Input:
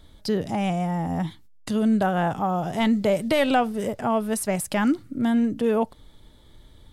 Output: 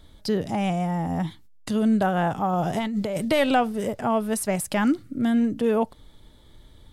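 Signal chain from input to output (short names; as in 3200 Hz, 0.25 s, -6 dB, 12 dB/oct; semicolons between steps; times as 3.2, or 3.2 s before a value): 2.53–3.25 negative-ratio compressor -25 dBFS, ratio -1; 4.93–5.41 bell 930 Hz -8 dB 0.36 oct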